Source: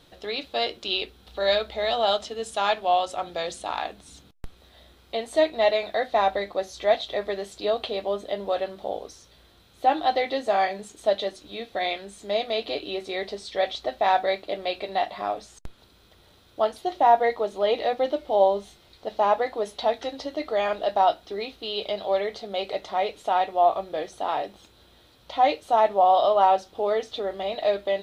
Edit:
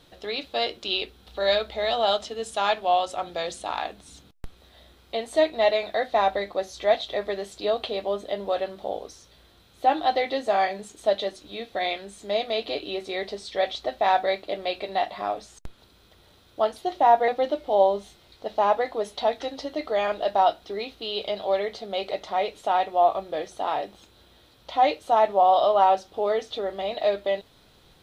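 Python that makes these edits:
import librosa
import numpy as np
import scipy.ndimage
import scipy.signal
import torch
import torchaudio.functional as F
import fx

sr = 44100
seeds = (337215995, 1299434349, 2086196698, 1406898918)

y = fx.edit(x, sr, fx.cut(start_s=17.28, length_s=0.61), tone=tone)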